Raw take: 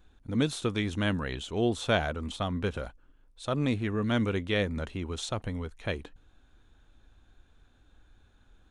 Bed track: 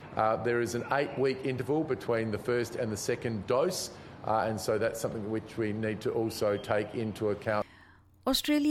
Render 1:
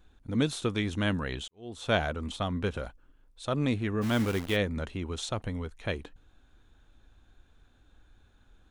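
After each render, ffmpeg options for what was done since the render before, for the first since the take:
ffmpeg -i in.wav -filter_complex "[0:a]asplit=3[link_01][link_02][link_03];[link_01]afade=type=out:start_time=4.01:duration=0.02[link_04];[link_02]acrusher=bits=7:dc=4:mix=0:aa=0.000001,afade=type=in:start_time=4.01:duration=0.02,afade=type=out:start_time=4.55:duration=0.02[link_05];[link_03]afade=type=in:start_time=4.55:duration=0.02[link_06];[link_04][link_05][link_06]amix=inputs=3:normalize=0,asplit=2[link_07][link_08];[link_07]atrim=end=1.48,asetpts=PTS-STARTPTS,afade=type=out:start_time=1.476:duration=0.004:curve=hsin[link_09];[link_08]atrim=start=1.48,asetpts=PTS-STARTPTS,afade=type=in:duration=0.46:curve=qua[link_10];[link_09][link_10]concat=n=2:v=0:a=1" out.wav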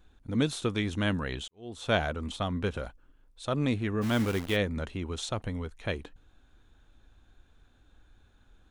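ffmpeg -i in.wav -af anull out.wav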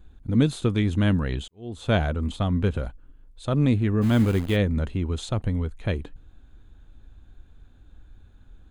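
ffmpeg -i in.wav -af "lowshelf=frequency=320:gain=11.5,bandreject=frequency=5600:width=7.5" out.wav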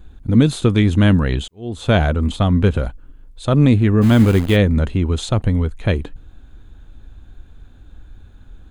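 ffmpeg -i in.wav -af "volume=8.5dB,alimiter=limit=-2dB:level=0:latency=1" out.wav

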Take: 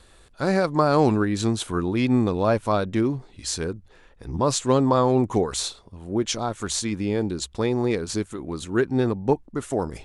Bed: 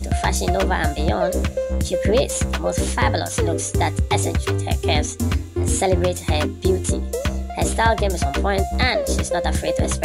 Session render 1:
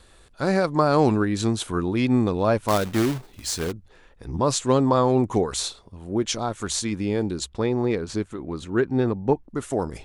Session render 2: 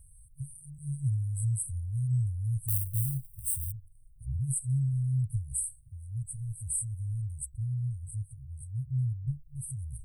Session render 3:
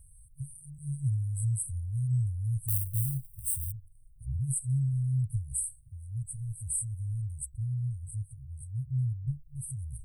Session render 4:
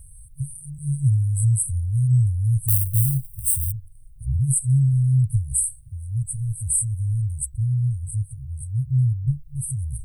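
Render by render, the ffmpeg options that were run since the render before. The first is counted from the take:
ffmpeg -i in.wav -filter_complex "[0:a]asettb=1/sr,asplit=3[link_01][link_02][link_03];[link_01]atrim=end=2.684[link_04];[link_02]atrim=start=2.68:end=3.72,asetpts=PTS-STARTPTS,afade=type=in:duration=0.004:curve=qsin,afade=type=out:start_time=1.036:duration=0.004:curve=qsin,acrusher=bits=2:mode=log:mix=0:aa=0.000001[link_05];[link_03]atrim=start=3.716[link_06];[link_04][link_05]acrossfade=duration=0.004:curve1=hsin:curve2=qsin[link_07];[link_07][link_06]acrossfade=duration=0.004:curve1=qsin:curve2=hsin,asettb=1/sr,asplit=3[link_08][link_09][link_10];[link_08]atrim=end=7.494[link_11];[link_09]atrim=start=7.49:end=9.49,asetpts=PTS-STARTPTS,afade=type=in:duration=0.004:curve=qsin,afade=type=out:start_time=1.996:duration=0.004:curve=qsin,aemphasis=mode=reproduction:type=50kf[link_12];[link_10]atrim=start=9.486[link_13];[link_11][link_12]acrossfade=duration=0.004:curve1=hsin:curve2=qsin[link_14];[link_14][link_13]acrossfade=duration=0.004:curve1=qsin:curve2=hsin" out.wav
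ffmpeg -i in.wav -af "afftfilt=real='re*(1-between(b*sr/4096,140,8000))':imag='im*(1-between(b*sr/4096,140,8000))':win_size=4096:overlap=0.75,highshelf=frequency=12000:gain=11.5" out.wav
ffmpeg -i in.wav -af anull out.wav
ffmpeg -i in.wav -af "volume=10.5dB,alimiter=limit=-2dB:level=0:latency=1" out.wav

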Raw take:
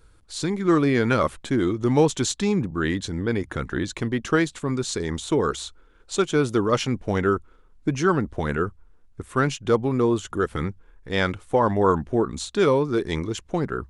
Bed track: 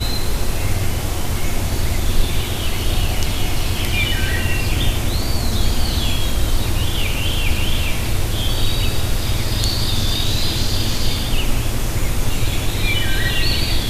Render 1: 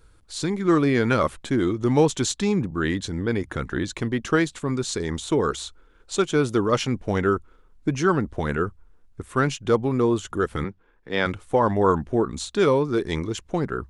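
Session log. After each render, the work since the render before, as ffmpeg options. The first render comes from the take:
ffmpeg -i in.wav -filter_complex "[0:a]asettb=1/sr,asplit=3[link_01][link_02][link_03];[link_01]atrim=end=10.644[link_04];[link_02]atrim=start=10.64:end=11.26,asetpts=PTS-STARTPTS,afade=type=in:duration=0.004:curve=qsin,afade=type=out:start_time=0.616:duration=0.004:curve=qsin,acrossover=split=160 4700:gain=0.224 1 0.178[link_05][link_06][link_07];[link_05][link_06][link_07]amix=inputs=3:normalize=0[link_08];[link_03]atrim=start=11.256[link_09];[link_04][link_08]acrossfade=duration=0.004:curve1=hsin:curve2=qsin[link_10];[link_10][link_09]acrossfade=duration=0.004:curve1=qsin:curve2=hsin" out.wav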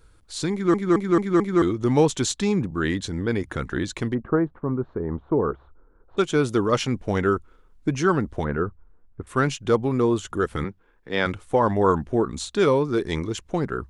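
ffmpeg -i in.wav -filter_complex "[0:a]asplit=3[link_01][link_02][link_03];[link_01]afade=type=out:start_time=4.13:duration=0.02[link_04];[link_02]lowpass=frequency=1200:width=0.5412,lowpass=frequency=1200:width=1.3066,afade=type=in:start_time=4.13:duration=0.02,afade=type=out:start_time=6.17:duration=0.02[link_05];[link_03]afade=type=in:start_time=6.17:duration=0.02[link_06];[link_04][link_05][link_06]amix=inputs=3:normalize=0,asettb=1/sr,asplit=3[link_07][link_08][link_09];[link_07]atrim=end=8.444[link_10];[link_08]atrim=start=8.44:end=9.27,asetpts=PTS-STARTPTS,afade=type=in:duration=0.004:curve=qsin,afade=type=out:start_time=0.826:duration=0.004:curve=qsin,lowpass=1500[link_11];[link_09]atrim=start=9.266[link_12];[link_10][link_11]acrossfade=duration=0.004:curve1=hsin:curve2=qsin[link_13];[link_13][link_12]acrossfade=duration=0.004:curve1=qsin:curve2=hsin,asplit=6[link_14][link_15][link_16][link_17][link_18][link_19];[link_14]atrim=end=0.742[link_20];[link_15]atrim=start=0.518:end=0.742[link_21];[link_16]atrim=start=0.518:end=0.742[link_22];[link_17]atrim=start=0.518:end=0.742[link_23];[link_18]atrim=start=0.518:end=0.742[link_24];[link_19]atrim=start=1.618[link_25];[link_20][link_21]acrossfade=duration=0.004:curve1=hsin:curve2=hsin[link_26];[link_26][link_22]acrossfade=duration=0.004:curve1=hsin:curve2=hsin[link_27];[link_27][link_23]acrossfade=duration=0.004:curve1=hsin:curve2=hsin[link_28];[link_28][link_24]acrossfade=duration=0.004:curve1=hsin:curve2=hsin[link_29];[link_29][link_25]acrossfade=duration=0.004:curve1=hsin:curve2=hsin" out.wav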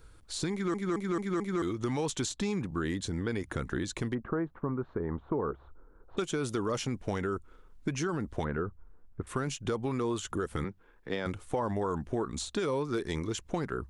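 ffmpeg -i in.wav -filter_complex "[0:a]alimiter=limit=-14dB:level=0:latency=1:release=25,acrossover=split=930|6300[link_01][link_02][link_03];[link_01]acompressor=threshold=-31dB:ratio=4[link_04];[link_02]acompressor=threshold=-40dB:ratio=4[link_05];[link_03]acompressor=threshold=-41dB:ratio=4[link_06];[link_04][link_05][link_06]amix=inputs=3:normalize=0" out.wav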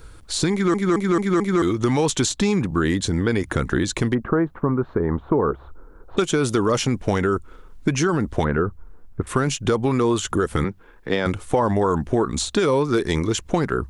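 ffmpeg -i in.wav -af "volume=12dB" out.wav

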